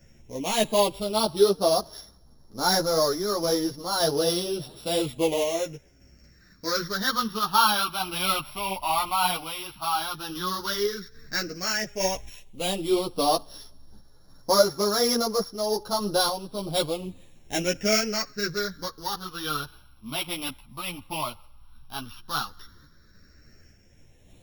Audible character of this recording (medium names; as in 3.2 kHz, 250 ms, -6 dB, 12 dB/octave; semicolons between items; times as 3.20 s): a buzz of ramps at a fixed pitch in blocks of 8 samples; phasing stages 6, 0.084 Hz, lowest notch 450–2600 Hz; random-step tremolo; a shimmering, thickened sound